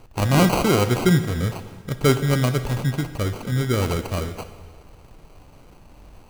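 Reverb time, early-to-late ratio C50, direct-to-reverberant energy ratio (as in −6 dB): 1.5 s, 11.0 dB, 9.5 dB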